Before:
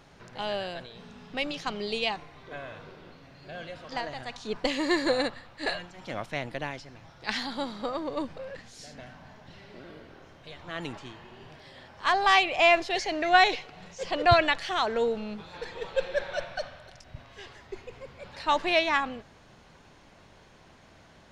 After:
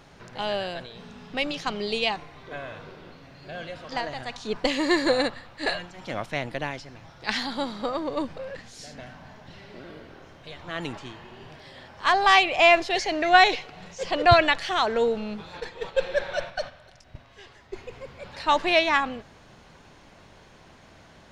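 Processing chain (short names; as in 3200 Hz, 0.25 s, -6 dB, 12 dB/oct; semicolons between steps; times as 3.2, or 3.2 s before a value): 15.6–17.78 gate -38 dBFS, range -6 dB; gain +3.5 dB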